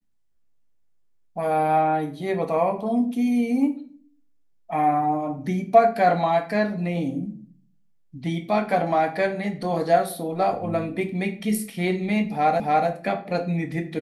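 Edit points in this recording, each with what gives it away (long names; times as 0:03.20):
0:12.60: the same again, the last 0.29 s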